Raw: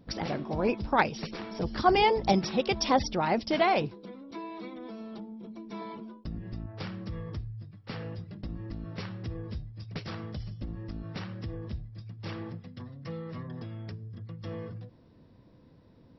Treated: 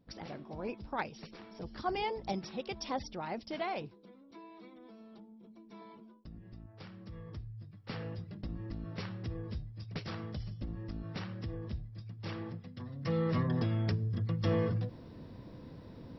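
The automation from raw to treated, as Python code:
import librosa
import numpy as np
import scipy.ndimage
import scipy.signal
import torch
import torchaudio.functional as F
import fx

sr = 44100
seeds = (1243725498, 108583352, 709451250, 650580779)

y = fx.gain(x, sr, db=fx.line((6.89, -12.0), (7.87, -2.5), (12.78, -2.5), (13.23, 8.5)))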